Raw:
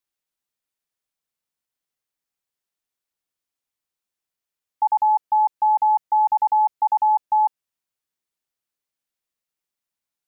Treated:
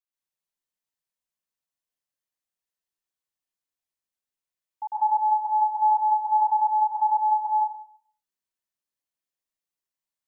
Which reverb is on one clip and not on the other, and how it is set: plate-style reverb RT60 0.56 s, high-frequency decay 0.9×, pre-delay 120 ms, DRR -7 dB; trim -13 dB

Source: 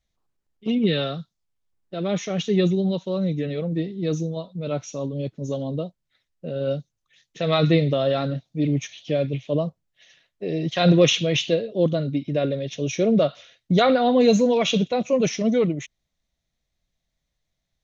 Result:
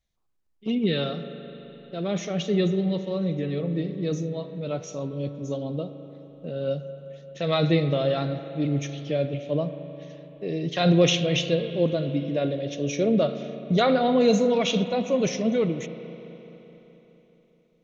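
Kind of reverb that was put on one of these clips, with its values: spring tank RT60 3.8 s, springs 35/42 ms, chirp 30 ms, DRR 9.5 dB; trim -3 dB

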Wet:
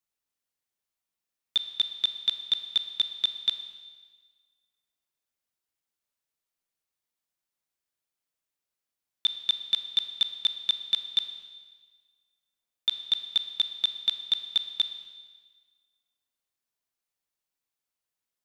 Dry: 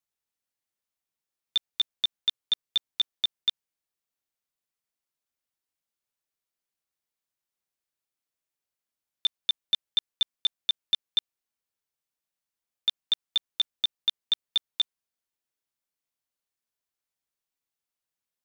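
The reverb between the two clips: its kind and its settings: Schroeder reverb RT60 1.5 s, combs from 26 ms, DRR 8.5 dB

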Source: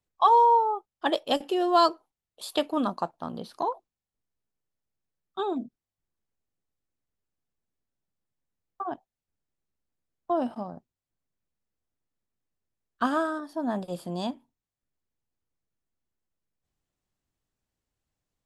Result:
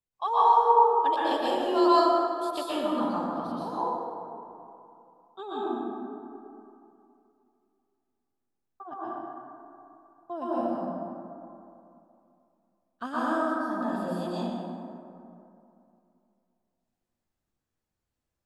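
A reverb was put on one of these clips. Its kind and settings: plate-style reverb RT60 2.7 s, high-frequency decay 0.4×, pre-delay 105 ms, DRR -10 dB; trim -10.5 dB

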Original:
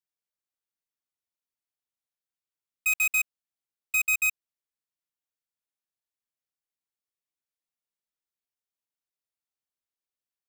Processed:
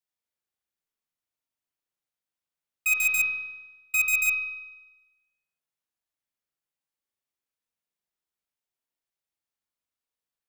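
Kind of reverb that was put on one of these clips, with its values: spring tank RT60 1.1 s, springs 40 ms, chirp 45 ms, DRR 1 dB

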